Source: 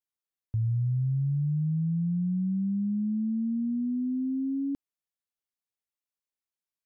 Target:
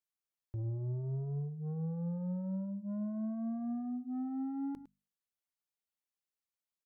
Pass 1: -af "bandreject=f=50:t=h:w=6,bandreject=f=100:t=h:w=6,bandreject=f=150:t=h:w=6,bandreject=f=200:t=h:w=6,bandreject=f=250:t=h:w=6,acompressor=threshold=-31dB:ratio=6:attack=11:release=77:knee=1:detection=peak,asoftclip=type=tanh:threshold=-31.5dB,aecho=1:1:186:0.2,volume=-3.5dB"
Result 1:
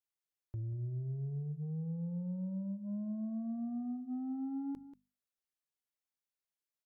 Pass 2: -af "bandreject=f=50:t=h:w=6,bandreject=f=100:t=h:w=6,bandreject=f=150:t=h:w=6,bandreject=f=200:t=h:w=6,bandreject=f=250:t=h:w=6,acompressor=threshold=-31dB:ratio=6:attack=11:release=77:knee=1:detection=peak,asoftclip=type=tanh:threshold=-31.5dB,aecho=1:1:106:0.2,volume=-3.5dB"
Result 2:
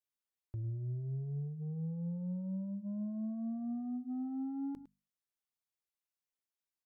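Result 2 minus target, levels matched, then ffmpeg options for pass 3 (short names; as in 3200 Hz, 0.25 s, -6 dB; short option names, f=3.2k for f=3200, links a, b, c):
compressor: peak gain reduction +6 dB
-af "bandreject=f=50:t=h:w=6,bandreject=f=100:t=h:w=6,bandreject=f=150:t=h:w=6,bandreject=f=200:t=h:w=6,bandreject=f=250:t=h:w=6,asoftclip=type=tanh:threshold=-31.5dB,aecho=1:1:106:0.2,volume=-3.5dB"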